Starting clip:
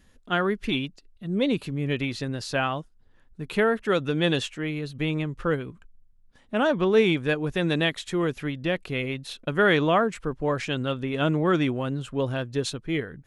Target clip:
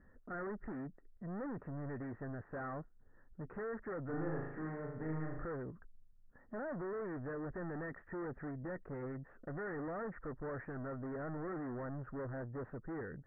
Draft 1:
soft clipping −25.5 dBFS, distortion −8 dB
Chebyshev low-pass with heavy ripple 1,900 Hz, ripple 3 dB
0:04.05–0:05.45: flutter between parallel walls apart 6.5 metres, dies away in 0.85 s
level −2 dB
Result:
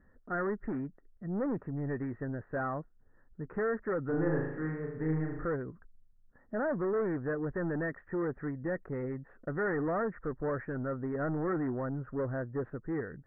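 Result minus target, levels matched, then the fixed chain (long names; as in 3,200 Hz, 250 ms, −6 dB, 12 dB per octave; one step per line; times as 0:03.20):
soft clipping: distortion −5 dB
soft clipping −37 dBFS, distortion −2 dB
Chebyshev low-pass with heavy ripple 1,900 Hz, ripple 3 dB
0:04.05–0:05.45: flutter between parallel walls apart 6.5 metres, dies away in 0.85 s
level −2 dB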